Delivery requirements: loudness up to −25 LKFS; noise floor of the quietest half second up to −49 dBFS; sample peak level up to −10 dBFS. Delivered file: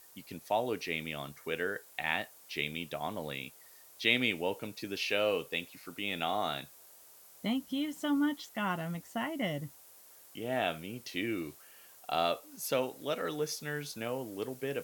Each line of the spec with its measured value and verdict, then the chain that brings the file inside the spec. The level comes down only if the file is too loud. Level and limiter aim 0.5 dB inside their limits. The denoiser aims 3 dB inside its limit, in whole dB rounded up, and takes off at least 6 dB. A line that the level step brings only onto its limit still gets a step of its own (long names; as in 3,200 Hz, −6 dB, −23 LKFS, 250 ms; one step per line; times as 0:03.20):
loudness −34.5 LKFS: in spec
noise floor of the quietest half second −57 dBFS: in spec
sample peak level −10.5 dBFS: in spec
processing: no processing needed